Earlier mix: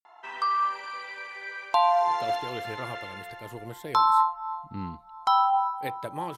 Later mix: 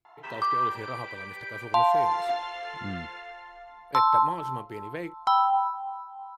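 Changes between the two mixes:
speech: entry −1.90 s
master: add high-shelf EQ 6,300 Hz −7.5 dB

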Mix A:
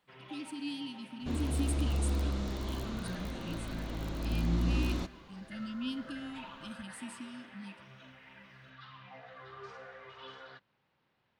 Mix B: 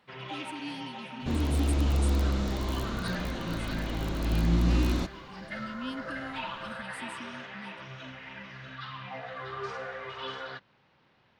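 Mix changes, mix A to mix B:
speech: send −9.5 dB
first sound +11.0 dB
second sound +5.5 dB

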